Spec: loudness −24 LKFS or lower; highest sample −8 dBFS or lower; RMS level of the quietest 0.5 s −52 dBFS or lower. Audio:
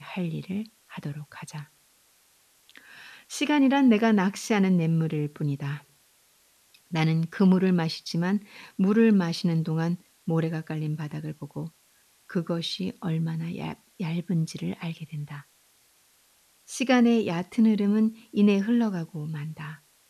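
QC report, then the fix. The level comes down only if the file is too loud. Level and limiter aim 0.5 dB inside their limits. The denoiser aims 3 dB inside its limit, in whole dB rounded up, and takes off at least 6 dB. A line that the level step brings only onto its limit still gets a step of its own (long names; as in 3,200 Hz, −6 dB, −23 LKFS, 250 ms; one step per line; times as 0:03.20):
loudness −26.0 LKFS: in spec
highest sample −9.5 dBFS: in spec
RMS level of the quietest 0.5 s −63 dBFS: in spec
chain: no processing needed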